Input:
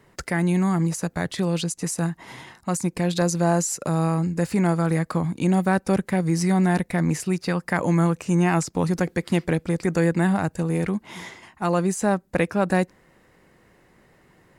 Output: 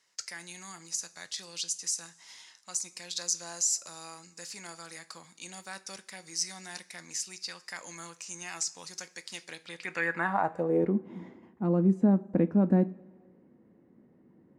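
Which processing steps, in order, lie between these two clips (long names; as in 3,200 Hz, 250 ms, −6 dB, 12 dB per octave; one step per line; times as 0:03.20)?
band-pass filter sweep 5,700 Hz → 250 Hz, 0:09.47–0:11.05
coupled-rooms reverb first 0.28 s, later 1.7 s, from −18 dB, DRR 10.5 dB
level +3.5 dB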